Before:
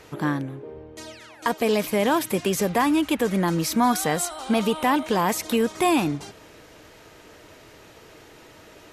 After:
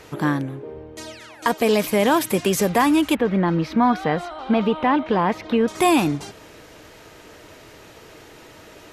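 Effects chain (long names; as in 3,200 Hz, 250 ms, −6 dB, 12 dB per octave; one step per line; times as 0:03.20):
0:03.15–0:05.68: high-frequency loss of the air 320 metres
level +3.5 dB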